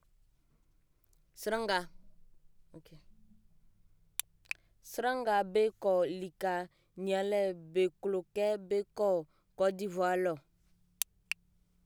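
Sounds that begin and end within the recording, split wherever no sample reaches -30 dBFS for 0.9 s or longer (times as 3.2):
1.47–1.81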